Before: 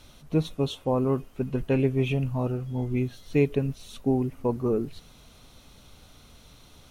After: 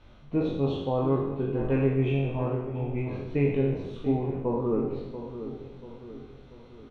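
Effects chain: spectral sustain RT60 1.06 s; low-pass 2.2 kHz 12 dB/octave; doubling 22 ms -5 dB; filtered feedback delay 687 ms, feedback 49%, low-pass 1.4 kHz, level -10.5 dB; trim -4 dB

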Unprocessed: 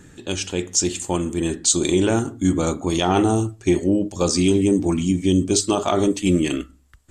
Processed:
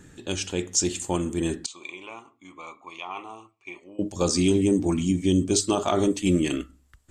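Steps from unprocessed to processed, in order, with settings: 1.66–3.99 s: two resonant band-passes 1.6 kHz, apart 1.1 oct; trim -3.5 dB

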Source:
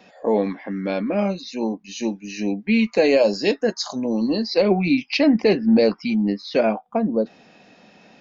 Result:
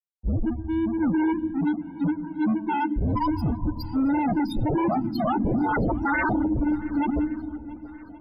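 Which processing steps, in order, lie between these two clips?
every band turned upside down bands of 500 Hz; high-order bell 1.2 kHz -9.5 dB; band-stop 3 kHz, Q 6.3; in parallel at +1 dB: peak limiter -17 dBFS, peak gain reduction 10 dB; 5.74–6.33 s: on the sum: waveshaping leveller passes 2; loudest bins only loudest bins 1; crossover distortion -38 dBFS; algorithmic reverb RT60 2.7 s, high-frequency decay 0.5×, pre-delay 30 ms, DRR 10.5 dB; wavefolder -22.5 dBFS; loudest bins only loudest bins 32; shuffle delay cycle 1124 ms, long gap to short 1.5:1, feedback 38%, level -21 dB; trim +4.5 dB

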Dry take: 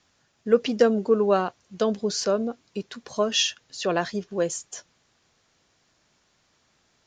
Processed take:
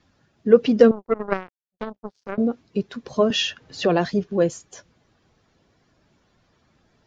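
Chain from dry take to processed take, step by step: coarse spectral quantiser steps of 15 dB; bass shelf 490 Hz +8.5 dB; 0.91–2.38 s: power-law waveshaper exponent 3; distance through air 100 m; 3.30–4.14 s: three bands compressed up and down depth 40%; trim +1.5 dB

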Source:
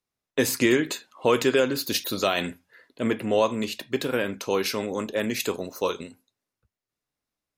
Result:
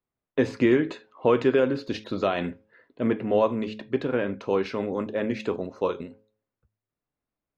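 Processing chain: tape spacing loss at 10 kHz 37 dB; de-hum 107.3 Hz, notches 5; trim +2.5 dB

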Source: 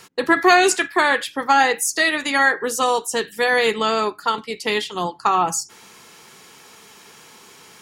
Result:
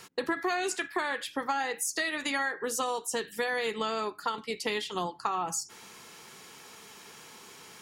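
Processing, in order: compression 6:1, threshold -24 dBFS, peak gain reduction 14 dB; trim -4 dB

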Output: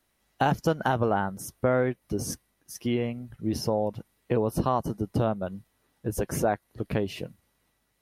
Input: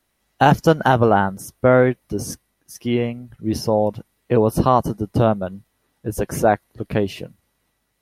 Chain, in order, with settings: compression 2:1, threshold -24 dBFS, peak gain reduction 9 dB; trim -2.5 dB

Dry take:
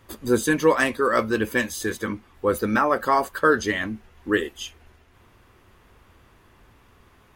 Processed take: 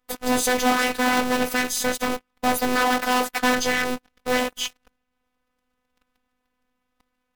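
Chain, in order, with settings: cycle switcher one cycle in 2, inverted; waveshaping leveller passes 5; robot voice 251 Hz; trim -8.5 dB

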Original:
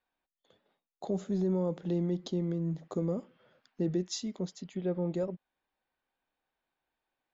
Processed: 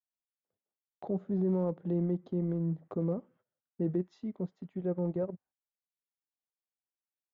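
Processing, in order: low-pass 1.5 kHz 12 dB/octave; gate -59 dBFS, range -22 dB; high-pass 53 Hz 12 dB/octave; peaking EQ 100 Hz +6.5 dB 0.77 oct; transient shaper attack -2 dB, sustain -7 dB

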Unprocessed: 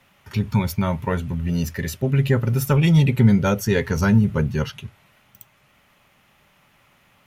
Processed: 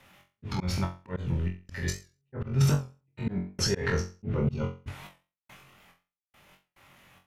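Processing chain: low-pass that closes with the level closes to 1.8 kHz, closed at -13.5 dBFS; 2.71–3.27 s: comb 6.4 ms, depth 63%; in parallel at +2 dB: peak limiter -21.5 dBFS, peak gain reduction 18 dB; on the sum: transient shaper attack -9 dB, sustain +11 dB; 4.36–4.84 s: Butterworth band-stop 1.7 kHz, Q 2.7; trance gate "x.xx.xx.x..xx.." 71 bpm -60 dB; on a send: flutter echo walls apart 3.8 m, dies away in 0.32 s; on the sum: slow attack 191 ms; warped record 78 rpm, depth 100 cents; trim -8.5 dB

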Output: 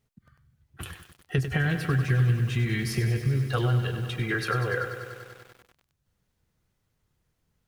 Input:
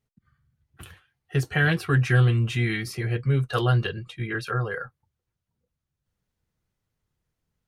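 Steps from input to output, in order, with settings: 1.38–3.82 s: bass shelf 170 Hz +9.5 dB; compression 6:1, threshold -29 dBFS, peak gain reduction 17.5 dB; bit-crushed delay 97 ms, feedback 80%, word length 9-bit, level -9.5 dB; trim +5.5 dB

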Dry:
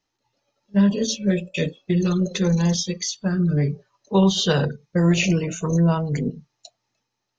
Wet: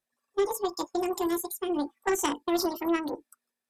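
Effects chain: Chebyshev shaper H 2 -7 dB, 4 -20 dB, 7 -34 dB, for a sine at -6 dBFS; speed mistake 7.5 ips tape played at 15 ips; trim -8 dB

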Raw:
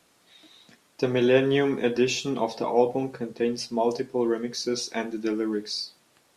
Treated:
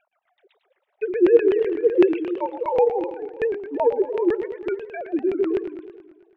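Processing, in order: formants replaced by sine waves; LFO low-pass saw down 7.9 Hz 260–2500 Hz; modulated delay 109 ms, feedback 60%, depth 179 cents, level -10.5 dB

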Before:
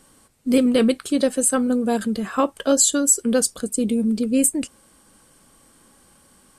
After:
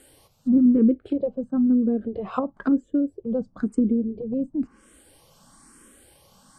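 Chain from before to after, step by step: low-pass that closes with the level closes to 350 Hz, closed at -18 dBFS; barber-pole phaser +1 Hz; trim +3.5 dB

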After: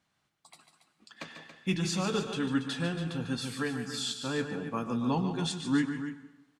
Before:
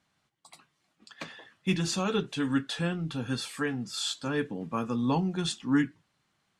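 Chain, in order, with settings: loudspeakers at several distances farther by 50 m -9 dB, 96 m -11 dB; plate-style reverb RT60 1 s, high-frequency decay 0.85×, pre-delay 85 ms, DRR 13.5 dB; trim -2.5 dB

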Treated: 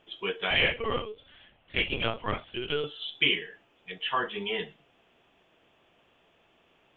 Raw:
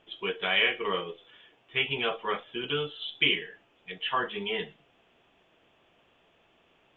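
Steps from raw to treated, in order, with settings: 0.50–2.84 s: LPC vocoder at 8 kHz pitch kept

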